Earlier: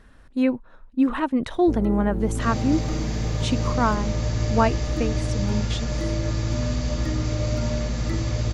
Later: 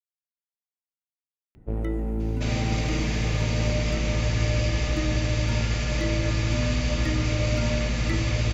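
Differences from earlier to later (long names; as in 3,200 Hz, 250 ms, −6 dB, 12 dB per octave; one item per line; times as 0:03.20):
speech: muted
master: add parametric band 2,500 Hz +10.5 dB 0.94 octaves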